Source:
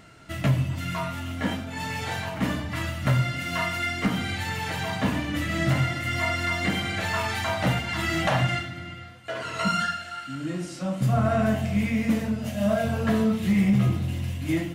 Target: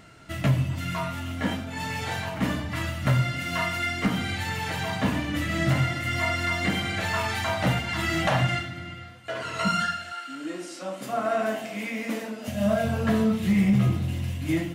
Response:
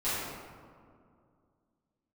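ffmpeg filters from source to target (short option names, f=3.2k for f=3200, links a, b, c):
-filter_complex "[0:a]asettb=1/sr,asplit=3[a][b][c];[a]atrim=end=10.124[d];[b]atrim=start=10.12:end=12.48,asetpts=PTS-STARTPTS,afade=t=in:d=0.004:c=qsin,afade=t=out:st=2.356:d=0.004:c=qsin,highpass=f=280:w=0.5412,highpass=f=280:w=1.3066[e];[c]atrim=start=12.476[f];[d][e]acrossfade=d=0.004:c1=hsin:c2=qsin[g];[g][f]acrossfade=d=0.004:c1=qsin:c2=hsin"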